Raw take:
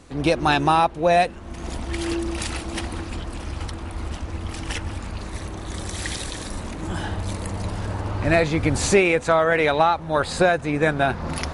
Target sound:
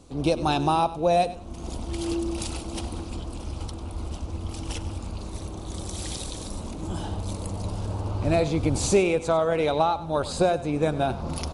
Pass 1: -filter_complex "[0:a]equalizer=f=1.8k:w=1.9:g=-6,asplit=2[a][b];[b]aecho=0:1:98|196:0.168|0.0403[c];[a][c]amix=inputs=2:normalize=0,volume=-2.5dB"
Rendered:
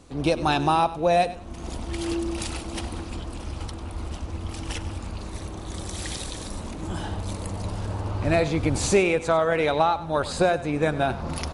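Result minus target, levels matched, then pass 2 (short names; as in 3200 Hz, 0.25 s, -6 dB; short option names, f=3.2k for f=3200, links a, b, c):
2000 Hz band +5.0 dB
-filter_complex "[0:a]equalizer=f=1.8k:w=1.9:g=-16,asplit=2[a][b];[b]aecho=0:1:98|196:0.168|0.0403[c];[a][c]amix=inputs=2:normalize=0,volume=-2.5dB"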